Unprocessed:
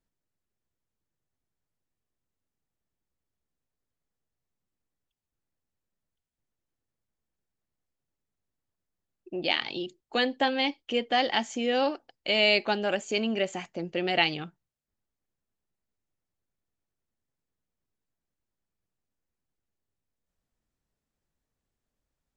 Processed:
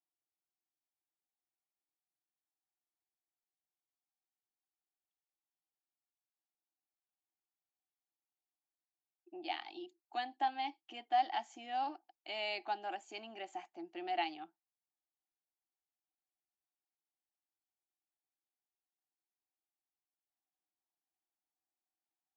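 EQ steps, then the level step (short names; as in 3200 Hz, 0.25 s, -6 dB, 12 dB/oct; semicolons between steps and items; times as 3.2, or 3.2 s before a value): double band-pass 500 Hz, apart 1.2 oct; differentiator; +17.0 dB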